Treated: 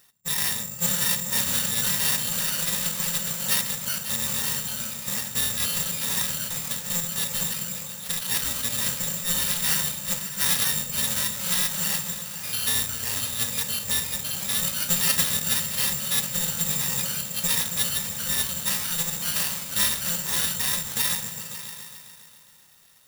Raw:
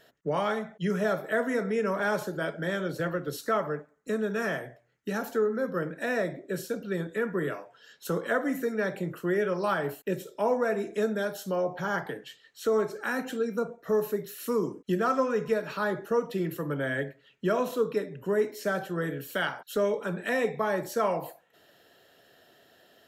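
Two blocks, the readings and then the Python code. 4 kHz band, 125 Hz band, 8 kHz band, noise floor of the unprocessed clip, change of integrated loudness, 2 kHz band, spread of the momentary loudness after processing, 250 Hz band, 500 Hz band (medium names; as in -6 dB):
+18.0 dB, +1.5 dB, +24.5 dB, -62 dBFS, +6.5 dB, +1.0 dB, 6 LU, -6.0 dB, -15.5 dB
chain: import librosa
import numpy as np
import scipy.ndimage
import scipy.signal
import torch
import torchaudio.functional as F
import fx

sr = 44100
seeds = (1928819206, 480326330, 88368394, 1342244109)

y = fx.bit_reversed(x, sr, seeds[0], block=128)
y = fx.highpass(y, sr, hz=110.0, slope=6)
y = fx.high_shelf(y, sr, hz=5800.0, db=-8.5)
y = fx.hpss(y, sr, part='harmonic', gain_db=4)
y = fx.echo_pitch(y, sr, ms=572, semitones=1, count=3, db_per_echo=-6.0)
y = fx.echo_opening(y, sr, ms=136, hz=200, octaves=2, feedback_pct=70, wet_db=-3)
y = (np.kron(y[::6], np.eye(6)[0]) * 6)[:len(y)]
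y = y * 10.0 ** (-3.0 / 20.0)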